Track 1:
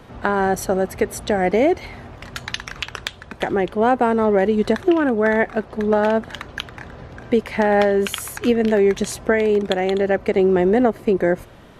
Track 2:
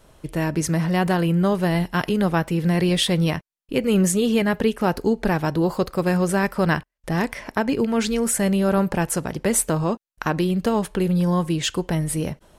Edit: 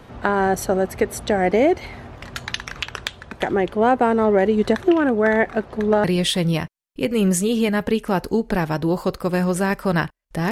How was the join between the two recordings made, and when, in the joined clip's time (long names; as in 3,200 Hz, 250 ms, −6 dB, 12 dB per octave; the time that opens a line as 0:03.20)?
track 1
0:06.04: continue with track 2 from 0:02.77